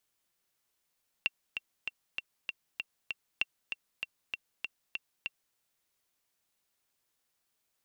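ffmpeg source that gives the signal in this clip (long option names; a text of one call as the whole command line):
ffmpeg -f lavfi -i "aevalsrc='pow(10,(-14.5-7*gte(mod(t,7*60/195),60/195))/20)*sin(2*PI*2730*mod(t,60/195))*exp(-6.91*mod(t,60/195)/0.03)':duration=4.3:sample_rate=44100" out.wav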